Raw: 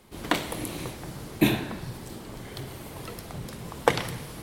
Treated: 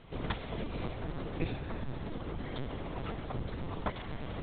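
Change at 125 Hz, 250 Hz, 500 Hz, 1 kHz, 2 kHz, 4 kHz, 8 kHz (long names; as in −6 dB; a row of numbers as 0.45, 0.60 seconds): −3.5 dB, −9.0 dB, −8.5 dB, −9.0 dB, −11.5 dB, −12.0 dB, below −40 dB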